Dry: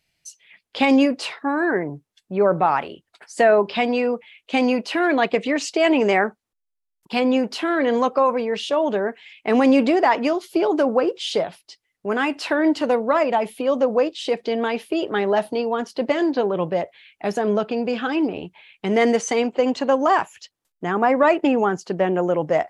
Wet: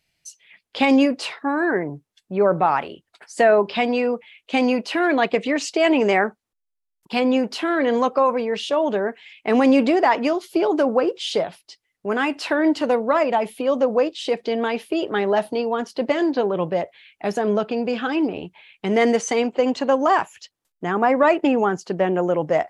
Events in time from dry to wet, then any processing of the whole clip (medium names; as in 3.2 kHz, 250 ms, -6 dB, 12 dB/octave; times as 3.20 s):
no events